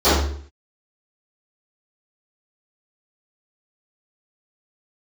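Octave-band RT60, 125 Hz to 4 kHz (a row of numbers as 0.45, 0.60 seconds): 0.60, 0.60, 0.60, 0.50, 0.50, 0.45 seconds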